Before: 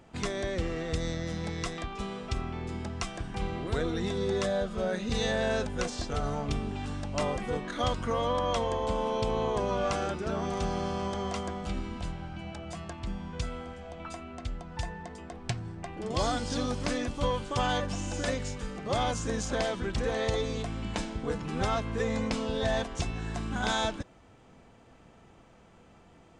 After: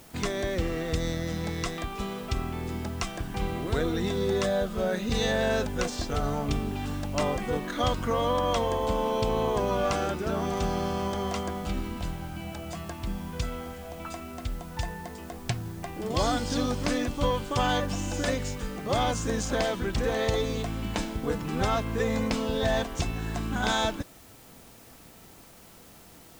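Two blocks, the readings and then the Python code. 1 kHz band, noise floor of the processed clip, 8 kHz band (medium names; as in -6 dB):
+2.5 dB, -51 dBFS, +3.0 dB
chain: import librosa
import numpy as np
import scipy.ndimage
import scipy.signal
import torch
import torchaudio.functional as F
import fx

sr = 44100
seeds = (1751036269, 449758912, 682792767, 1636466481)

p1 = fx.peak_eq(x, sr, hz=290.0, db=3.0, octaves=0.21)
p2 = fx.quant_dither(p1, sr, seeds[0], bits=8, dither='triangular')
p3 = p1 + F.gain(torch.from_numpy(p2), -5.5).numpy()
y = F.gain(torch.from_numpy(p3), -1.0).numpy()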